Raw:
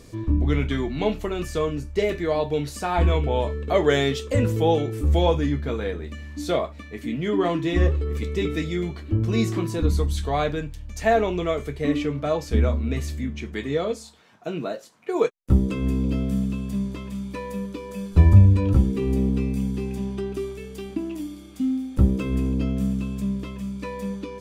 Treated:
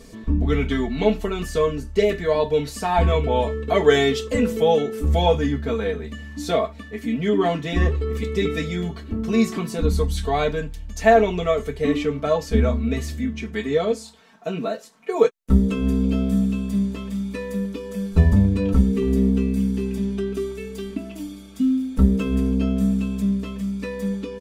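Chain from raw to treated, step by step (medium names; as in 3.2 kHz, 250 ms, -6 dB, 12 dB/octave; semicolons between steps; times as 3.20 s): comb 4.5 ms, depth 91%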